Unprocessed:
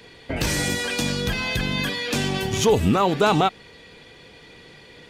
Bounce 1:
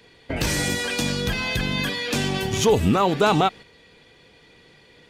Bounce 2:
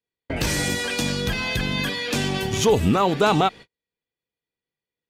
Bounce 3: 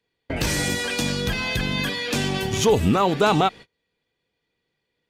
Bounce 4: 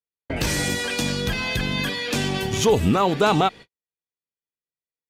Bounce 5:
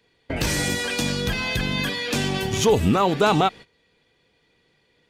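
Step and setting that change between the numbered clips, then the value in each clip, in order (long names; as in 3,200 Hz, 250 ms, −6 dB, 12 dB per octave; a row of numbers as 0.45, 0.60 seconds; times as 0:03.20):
noise gate, range: −6, −45, −31, −58, −18 decibels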